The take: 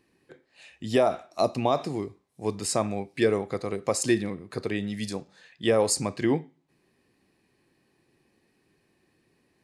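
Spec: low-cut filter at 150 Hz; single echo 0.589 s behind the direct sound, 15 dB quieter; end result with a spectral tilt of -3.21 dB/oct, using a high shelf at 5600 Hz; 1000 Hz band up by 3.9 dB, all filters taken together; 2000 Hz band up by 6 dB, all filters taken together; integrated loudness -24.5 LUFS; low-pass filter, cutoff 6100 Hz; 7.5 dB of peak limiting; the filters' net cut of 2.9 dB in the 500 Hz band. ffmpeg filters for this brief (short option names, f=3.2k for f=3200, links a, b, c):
-af "highpass=150,lowpass=6.1k,equalizer=f=500:t=o:g=-6,equalizer=f=1k:t=o:g=6.5,equalizer=f=2k:t=o:g=4.5,highshelf=f=5.6k:g=9,alimiter=limit=-16dB:level=0:latency=1,aecho=1:1:589:0.178,volume=6dB"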